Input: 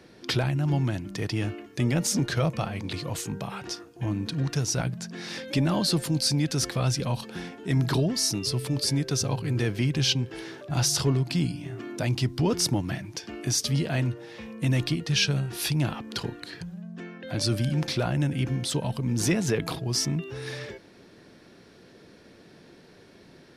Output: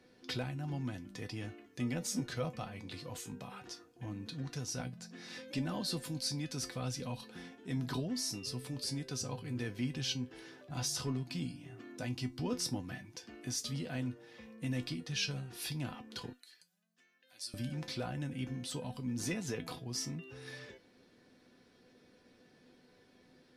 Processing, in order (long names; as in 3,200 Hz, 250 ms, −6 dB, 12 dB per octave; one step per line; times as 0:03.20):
0:16.33–0:17.54: first difference
tuned comb filter 250 Hz, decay 0.17 s, harmonics all, mix 80%
level −3 dB